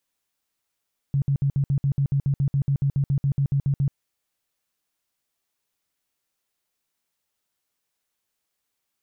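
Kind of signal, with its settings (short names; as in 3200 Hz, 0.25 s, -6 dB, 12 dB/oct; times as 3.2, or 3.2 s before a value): tone bursts 139 Hz, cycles 11, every 0.14 s, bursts 20, -18 dBFS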